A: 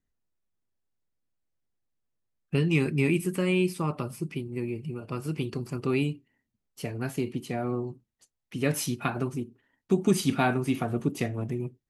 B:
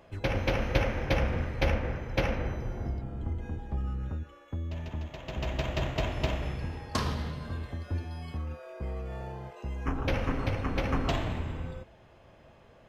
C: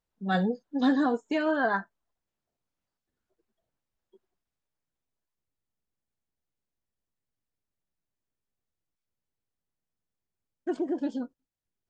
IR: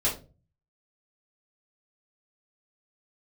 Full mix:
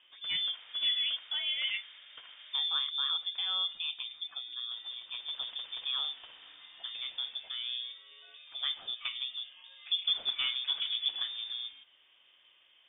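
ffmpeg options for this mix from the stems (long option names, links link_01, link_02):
-filter_complex "[0:a]volume=-7dB[link_01];[1:a]highpass=frequency=520:poles=1,alimiter=limit=-24dB:level=0:latency=1:release=494,acompressor=threshold=-48dB:ratio=2.5,volume=-2dB[link_02];[2:a]volume=-6dB[link_03];[link_01][link_02][link_03]amix=inputs=3:normalize=0,lowpass=frequency=3100:width_type=q:width=0.5098,lowpass=frequency=3100:width_type=q:width=0.6013,lowpass=frequency=3100:width_type=q:width=0.9,lowpass=frequency=3100:width_type=q:width=2.563,afreqshift=-3700,equalizer=frequency=1200:width_type=o:width=1.9:gain=-4.5"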